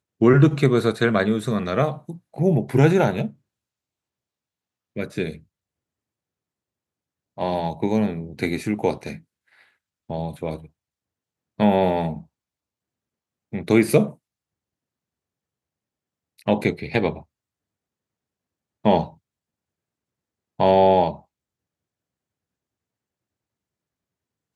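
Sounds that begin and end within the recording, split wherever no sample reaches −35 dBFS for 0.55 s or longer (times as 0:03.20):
0:04.96–0:05.37
0:07.38–0:09.16
0:10.10–0:10.59
0:11.59–0:12.21
0:13.53–0:14.12
0:16.39–0:17.20
0:18.85–0:19.08
0:20.59–0:21.16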